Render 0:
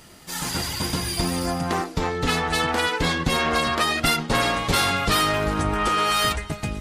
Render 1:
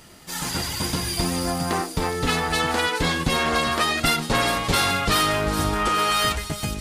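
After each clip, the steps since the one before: feedback echo behind a high-pass 417 ms, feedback 65%, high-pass 5 kHz, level -5.5 dB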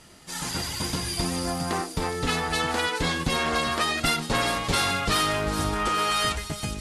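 elliptic low-pass 12 kHz, stop band 40 dB; trim -2.5 dB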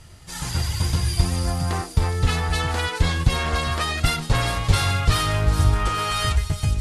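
resonant low shelf 150 Hz +12.5 dB, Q 1.5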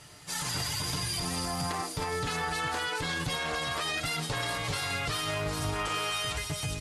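high-pass 320 Hz 6 dB/octave; comb 6.8 ms, depth 49%; peak limiter -23 dBFS, peak gain reduction 11 dB

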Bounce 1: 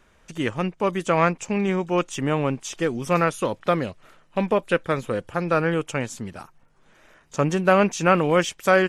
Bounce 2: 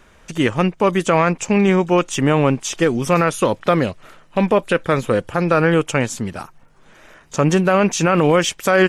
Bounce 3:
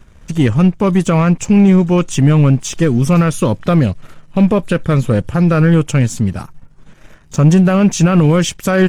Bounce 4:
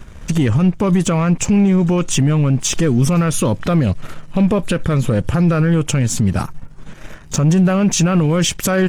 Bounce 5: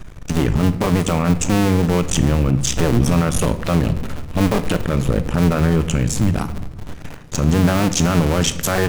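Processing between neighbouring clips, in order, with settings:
peak limiter -14 dBFS, peak gain reduction 9.5 dB; trim +8.5 dB
tone controls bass +15 dB, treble +3 dB; waveshaping leveller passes 1; trim -4.5 dB
in parallel at +2.5 dB: compression, threshold -17 dBFS, peak gain reduction 11 dB; on the sum: peak limiter -7.5 dBFS, peak gain reduction 9 dB
cycle switcher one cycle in 2, muted; simulated room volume 380 m³, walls mixed, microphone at 0.38 m

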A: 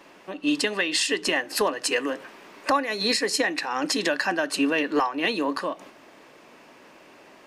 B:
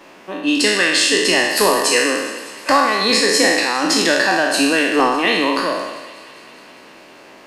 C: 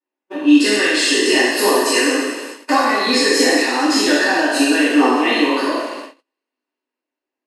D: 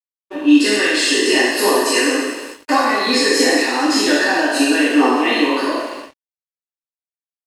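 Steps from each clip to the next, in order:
spectral sustain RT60 1.15 s; hum notches 50/100/150 Hz; thinning echo 203 ms, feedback 78%, high-pass 740 Hz, level -18 dB; trim +5 dB
two-slope reverb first 0.62 s, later 2.2 s, DRR -10 dB; gate -20 dBFS, range -44 dB; resonant low shelf 200 Hz -9.5 dB, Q 3; trim -11.5 dB
crossover distortion -46.5 dBFS

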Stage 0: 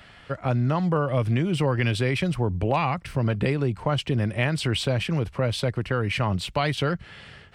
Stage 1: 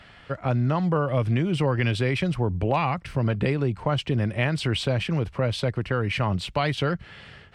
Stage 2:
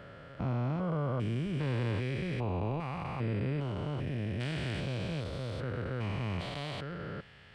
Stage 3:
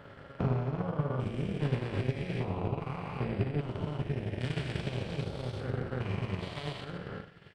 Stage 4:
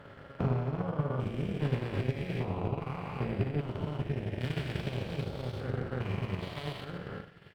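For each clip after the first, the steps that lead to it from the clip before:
treble shelf 9.5 kHz -10.5 dB
spectrogram pixelated in time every 400 ms; trim -6.5 dB
reverse bouncing-ball echo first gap 40 ms, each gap 1.4×, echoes 5; transient shaper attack +9 dB, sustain -7 dB; AM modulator 280 Hz, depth 60%
median filter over 5 samples

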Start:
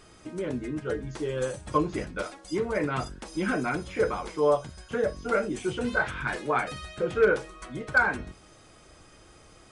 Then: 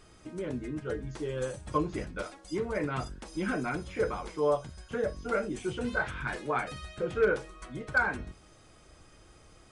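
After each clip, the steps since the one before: bass shelf 110 Hz +5.5 dB; trim -4.5 dB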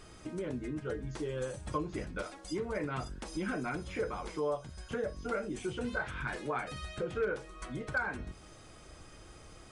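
compression 2:1, threshold -42 dBFS, peak gain reduction 12 dB; trim +3.5 dB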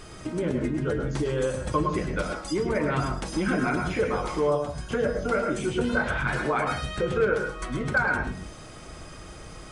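reverberation RT60 0.35 s, pre-delay 98 ms, DRR 3.5 dB; trim +9 dB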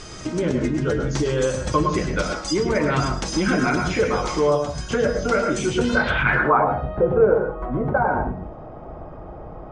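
low-pass sweep 6.2 kHz -> 780 Hz, 5.93–6.68 s; trim +5 dB

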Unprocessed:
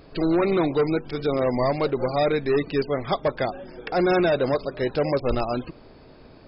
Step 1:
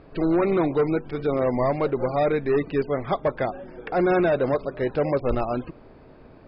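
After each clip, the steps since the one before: low-pass 2.3 kHz 12 dB/octave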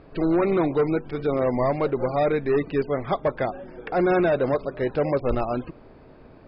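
no audible change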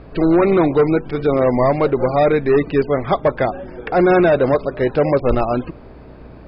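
hum 60 Hz, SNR 27 dB; trim +7.5 dB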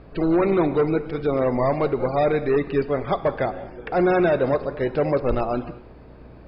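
gated-style reverb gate 250 ms flat, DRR 12 dB; trim -6 dB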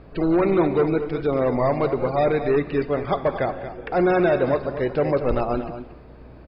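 delay 231 ms -11 dB

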